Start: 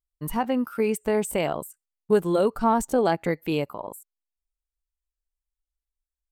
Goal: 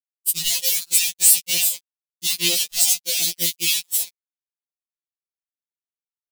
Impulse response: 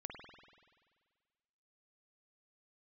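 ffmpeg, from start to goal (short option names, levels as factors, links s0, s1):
-filter_complex "[0:a]acompressor=threshold=0.0251:ratio=10,equalizer=f=800:t=o:w=1.7:g=-6,acrossover=split=3800[s0][s1];[s0]adelay=150[s2];[s2][s1]amix=inputs=2:normalize=0,acrusher=bits=6:mix=0:aa=0.000001,agate=range=0.0398:threshold=0.0112:ratio=16:detection=peak,aexciter=amount=13:drive=9.7:freq=2300,aeval=exprs='sgn(val(0))*max(abs(val(0))-0.00376,0)':c=same,afftfilt=real='re*2.83*eq(mod(b,8),0)':imag='im*2.83*eq(mod(b,8),0)':win_size=2048:overlap=0.75"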